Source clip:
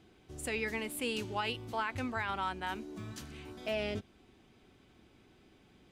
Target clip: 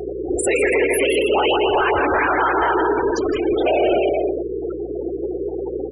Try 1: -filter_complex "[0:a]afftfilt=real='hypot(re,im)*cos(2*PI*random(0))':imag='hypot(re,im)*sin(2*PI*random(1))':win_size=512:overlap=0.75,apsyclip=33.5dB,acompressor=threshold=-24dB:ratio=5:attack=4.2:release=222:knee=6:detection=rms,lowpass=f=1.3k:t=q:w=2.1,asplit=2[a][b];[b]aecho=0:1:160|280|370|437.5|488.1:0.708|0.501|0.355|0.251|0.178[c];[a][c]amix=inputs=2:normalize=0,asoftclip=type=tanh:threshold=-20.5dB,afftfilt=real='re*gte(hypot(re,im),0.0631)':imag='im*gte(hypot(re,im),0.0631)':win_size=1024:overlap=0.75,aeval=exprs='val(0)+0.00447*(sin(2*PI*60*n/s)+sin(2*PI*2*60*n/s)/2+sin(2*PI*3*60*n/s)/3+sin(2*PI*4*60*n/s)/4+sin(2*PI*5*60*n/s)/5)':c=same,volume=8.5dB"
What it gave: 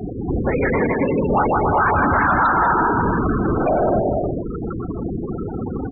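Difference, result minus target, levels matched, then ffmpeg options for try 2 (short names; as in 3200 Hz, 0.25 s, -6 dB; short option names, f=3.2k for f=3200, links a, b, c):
1000 Hz band +3.0 dB; 250 Hz band +2.5 dB
-filter_complex "[0:a]afftfilt=real='hypot(re,im)*cos(2*PI*random(0))':imag='hypot(re,im)*sin(2*PI*random(1))':win_size=512:overlap=0.75,apsyclip=33.5dB,acompressor=threshold=-24dB:ratio=5:attack=4.2:release=222:knee=6:detection=rms,lowshelf=f=280:t=q:w=3:g=-10.5,asplit=2[a][b];[b]aecho=0:1:160|280|370|437.5|488.1:0.708|0.501|0.355|0.251|0.178[c];[a][c]amix=inputs=2:normalize=0,asoftclip=type=tanh:threshold=-20.5dB,afftfilt=real='re*gte(hypot(re,im),0.0631)':imag='im*gte(hypot(re,im),0.0631)':win_size=1024:overlap=0.75,aeval=exprs='val(0)+0.00447*(sin(2*PI*60*n/s)+sin(2*PI*2*60*n/s)/2+sin(2*PI*3*60*n/s)/3+sin(2*PI*4*60*n/s)/4+sin(2*PI*5*60*n/s)/5)':c=same,volume=8.5dB"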